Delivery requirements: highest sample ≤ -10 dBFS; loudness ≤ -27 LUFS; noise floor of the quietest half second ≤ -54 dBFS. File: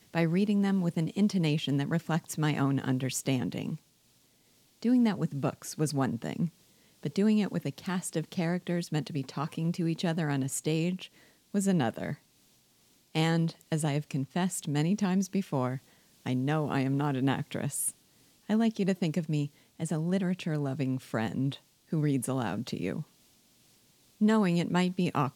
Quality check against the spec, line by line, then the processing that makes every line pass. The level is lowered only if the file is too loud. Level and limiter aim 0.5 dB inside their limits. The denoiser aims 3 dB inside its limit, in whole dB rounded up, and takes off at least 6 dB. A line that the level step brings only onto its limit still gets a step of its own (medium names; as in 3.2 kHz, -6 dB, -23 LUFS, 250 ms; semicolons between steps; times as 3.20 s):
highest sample -15.0 dBFS: pass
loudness -30.5 LUFS: pass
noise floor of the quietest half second -66 dBFS: pass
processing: none needed